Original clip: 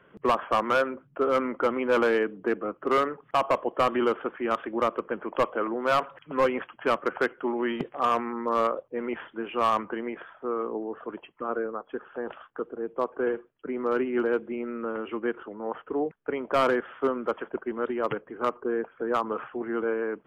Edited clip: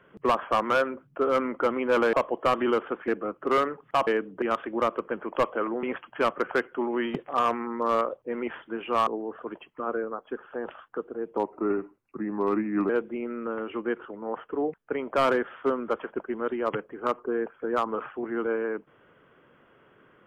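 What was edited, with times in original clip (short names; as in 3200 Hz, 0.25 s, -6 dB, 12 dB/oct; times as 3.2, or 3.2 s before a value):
2.13–2.48 swap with 3.47–4.42
5.83–6.49 cut
9.73–10.69 cut
12.99–14.27 speed 84%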